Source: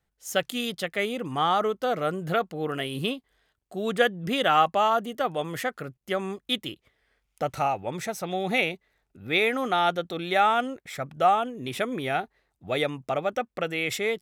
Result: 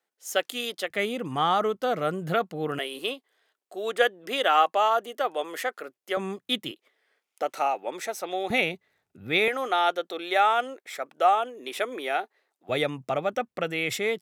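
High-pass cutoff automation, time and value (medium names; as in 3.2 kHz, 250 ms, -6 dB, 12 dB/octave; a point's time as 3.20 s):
high-pass 24 dB/octave
300 Hz
from 0.90 s 92 Hz
from 2.79 s 340 Hz
from 6.17 s 130 Hz
from 6.71 s 310 Hz
from 8.50 s 88 Hz
from 9.48 s 340 Hz
from 12.69 s 89 Hz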